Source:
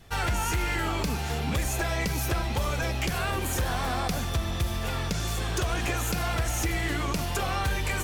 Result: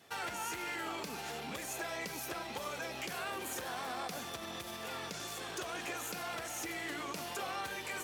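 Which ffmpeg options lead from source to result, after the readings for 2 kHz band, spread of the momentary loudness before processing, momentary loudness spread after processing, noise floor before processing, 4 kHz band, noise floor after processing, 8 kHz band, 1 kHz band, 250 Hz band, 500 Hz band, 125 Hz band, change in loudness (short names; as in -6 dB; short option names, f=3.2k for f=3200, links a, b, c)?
-9.0 dB, 2 LU, 3 LU, -31 dBFS, -9.0 dB, -44 dBFS, -9.0 dB, -9.0 dB, -13.0 dB, -9.5 dB, -25.0 dB, -11.0 dB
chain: -af "alimiter=level_in=1.5dB:limit=-24dB:level=0:latency=1:release=41,volume=-1.5dB,highpass=280,volume=-4dB"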